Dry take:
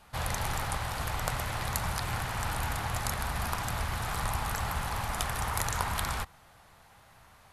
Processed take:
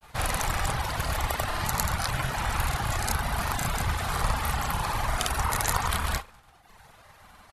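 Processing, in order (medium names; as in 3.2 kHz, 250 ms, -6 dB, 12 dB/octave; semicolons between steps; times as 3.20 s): reverse bouncing-ball echo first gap 30 ms, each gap 1.3×, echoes 5; reverb removal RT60 0.83 s; granulator, pitch spread up and down by 0 st; trim +6 dB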